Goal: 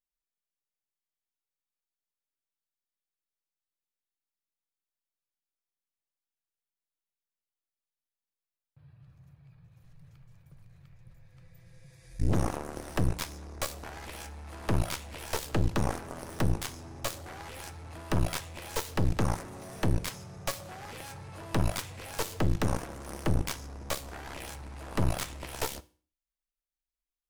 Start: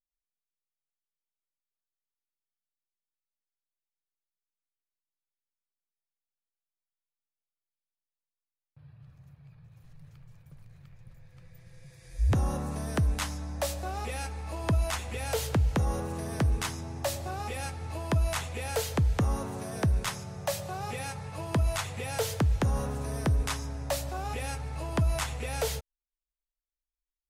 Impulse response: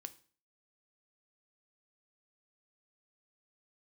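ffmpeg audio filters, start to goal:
-filter_complex "[0:a]aeval=exprs='clip(val(0),-1,0.015)':c=same,aeval=exprs='0.133*(cos(1*acos(clip(val(0)/0.133,-1,1)))-cos(1*PI/2))+0.00944*(cos(3*acos(clip(val(0)/0.133,-1,1)))-cos(3*PI/2))+0.0266*(cos(7*acos(clip(val(0)/0.133,-1,1)))-cos(7*PI/2))':c=same,asplit=2[a][b];[1:a]atrim=start_sample=2205[c];[b][c]afir=irnorm=-1:irlink=0,volume=8.5dB[d];[a][d]amix=inputs=2:normalize=0,volume=-6dB"

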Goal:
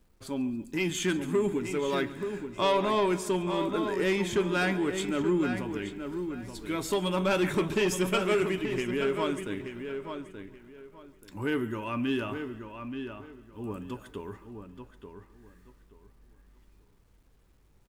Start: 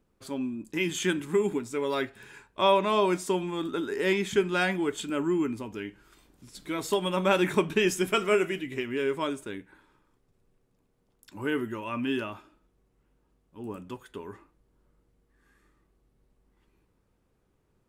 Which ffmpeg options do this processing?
-filter_complex "[0:a]lowshelf=f=88:g=12,acrusher=bits=11:mix=0:aa=0.000001,asplit=2[a][b];[b]aecho=0:1:141|282|423|564|705:0.1|0.059|0.0348|0.0205|0.0121[c];[a][c]amix=inputs=2:normalize=0,asoftclip=type=tanh:threshold=-19.5dB,asplit=2[d][e];[e]adelay=879,lowpass=f=3.1k:p=1,volume=-7.5dB,asplit=2[f][g];[g]adelay=879,lowpass=f=3.1k:p=1,volume=0.24,asplit=2[h][i];[i]adelay=879,lowpass=f=3.1k:p=1,volume=0.24[j];[f][h][j]amix=inputs=3:normalize=0[k];[d][k]amix=inputs=2:normalize=0"

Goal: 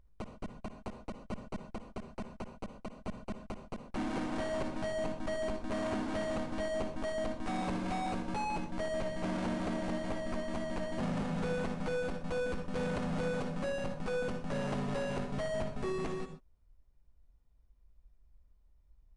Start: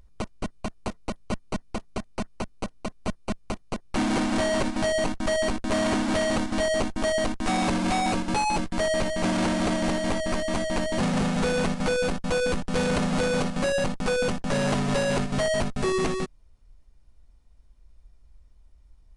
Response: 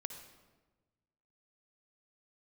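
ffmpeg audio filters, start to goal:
-filter_complex "[0:a]highshelf=f=3.1k:g=-9.5[a];[1:a]atrim=start_sample=2205,afade=t=out:st=0.19:d=0.01,atrim=end_sample=8820[b];[a][b]afir=irnorm=-1:irlink=0,volume=-7.5dB"

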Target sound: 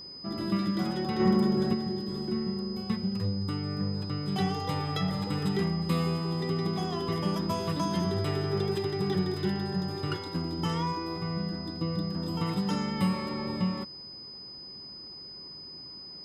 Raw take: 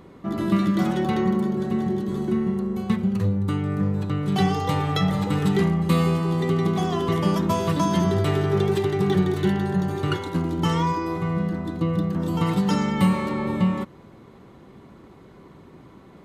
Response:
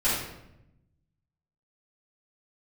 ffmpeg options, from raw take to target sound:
-filter_complex "[0:a]asplit=3[a][b][c];[a]afade=t=out:st=1.19:d=0.02[d];[b]acontrast=80,afade=t=in:st=1.19:d=0.02,afade=t=out:st=1.73:d=0.02[e];[c]afade=t=in:st=1.73:d=0.02[f];[d][e][f]amix=inputs=3:normalize=0,aeval=exprs='val(0)+0.02*sin(2*PI*5000*n/s)':c=same,volume=-8dB"

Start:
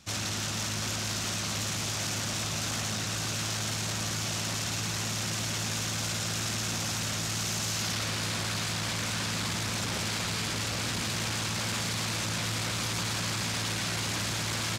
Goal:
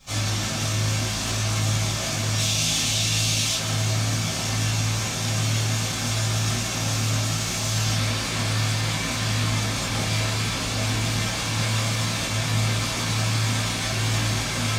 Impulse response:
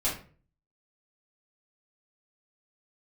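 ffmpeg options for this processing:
-filter_complex "[0:a]asettb=1/sr,asplit=3[a][b][c];[a]atrim=end=2.384[d];[b]atrim=start=2.38:end=3.55,asetpts=PTS-STARTPTS,afade=t=in:d=0.004:c=qsin,afade=t=out:st=1.166:d=0.004:c=qsin,highshelf=f=2.2k:t=q:w=1.5:g=7.5[e];[c]atrim=start=3.546[f];[d][e]acrossfade=d=0.004:c1=hsin:c2=qsin[g];[g][f]acrossfade=d=0.004:c1=qsin:c2=hsin,asplit=2[h][i];[i]alimiter=level_in=2.5dB:limit=-24dB:level=0:latency=1,volume=-2.5dB,volume=1.5dB[j];[h][j]amix=inputs=2:normalize=0,flanger=delay=19.5:depth=6.9:speed=0.64,acrusher=bits=10:mix=0:aa=0.000001[k];[1:a]atrim=start_sample=2205[l];[k][l]afir=irnorm=-1:irlink=0,volume=-4.5dB"

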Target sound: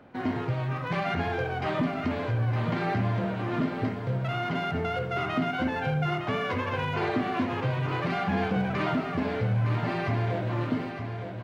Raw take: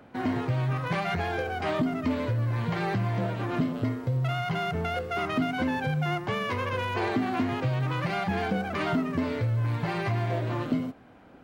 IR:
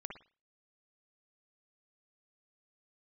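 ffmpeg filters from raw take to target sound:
-filter_complex "[0:a]aecho=1:1:912|1824|2736|3648|4560|5472:0.398|0.207|0.108|0.056|0.0291|0.0151,asplit=2[a][b];[1:a]atrim=start_sample=2205,lowpass=6.4k[c];[b][c]afir=irnorm=-1:irlink=0,volume=5.5dB[d];[a][d]amix=inputs=2:normalize=0,volume=-7.5dB"

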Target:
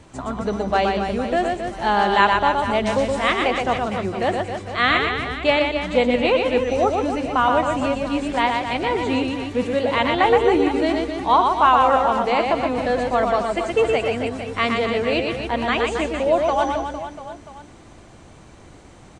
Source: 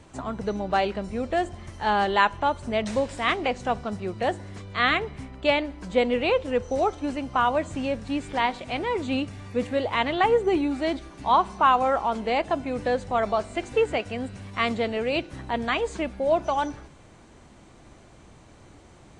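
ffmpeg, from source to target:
-af "aecho=1:1:120|270|457.5|691.9|984.8:0.631|0.398|0.251|0.158|0.1,volume=3.5dB"

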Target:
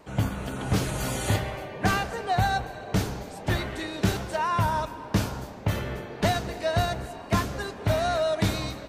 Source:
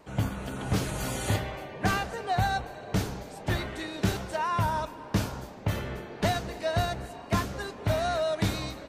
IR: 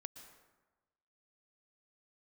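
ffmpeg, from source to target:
-filter_complex "[0:a]asplit=2[a][b];[1:a]atrim=start_sample=2205,asetrate=40131,aresample=44100[c];[b][c]afir=irnorm=-1:irlink=0,volume=-4dB[d];[a][d]amix=inputs=2:normalize=0"

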